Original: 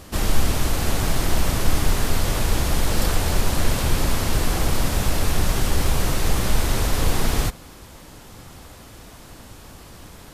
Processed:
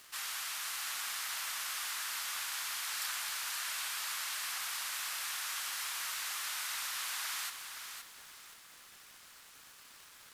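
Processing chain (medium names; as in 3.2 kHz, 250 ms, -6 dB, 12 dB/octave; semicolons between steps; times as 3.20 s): high-pass 1.2 kHz 24 dB/octave; crackle 510 per s -38 dBFS; bit-crushed delay 519 ms, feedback 35%, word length 9-bit, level -7 dB; trim -9 dB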